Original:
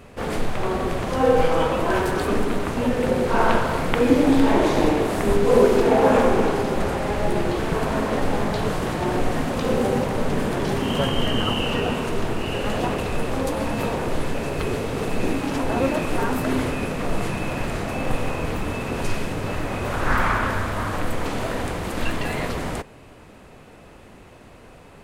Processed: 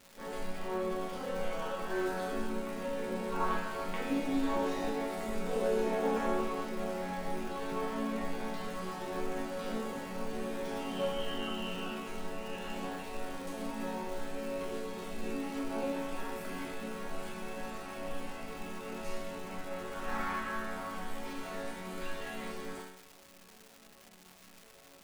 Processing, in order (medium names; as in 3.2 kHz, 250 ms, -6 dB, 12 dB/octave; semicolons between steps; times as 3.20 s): bass shelf 140 Hz -4.5 dB; chord resonator F#3 minor, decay 0.81 s; crackle 570 per s -51 dBFS; trim +7.5 dB